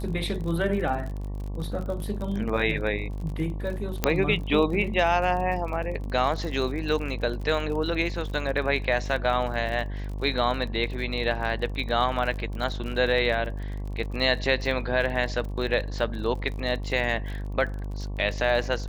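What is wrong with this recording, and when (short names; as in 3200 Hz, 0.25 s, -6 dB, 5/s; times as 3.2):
buzz 50 Hz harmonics 23 -32 dBFS
crackle 41/s -33 dBFS
4.04 pop -6 dBFS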